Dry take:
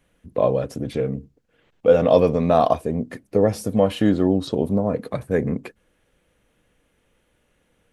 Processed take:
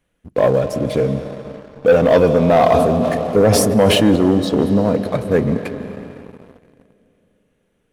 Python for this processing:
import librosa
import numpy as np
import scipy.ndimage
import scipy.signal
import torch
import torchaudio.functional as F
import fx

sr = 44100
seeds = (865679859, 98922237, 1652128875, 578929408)

y = fx.rev_freeverb(x, sr, rt60_s=3.9, hf_ratio=0.85, predelay_ms=120, drr_db=10.0)
y = fx.leveller(y, sr, passes=2)
y = fx.sustainer(y, sr, db_per_s=24.0, at=(2.5, 4.16))
y = F.gain(torch.from_numpy(y), -1.0).numpy()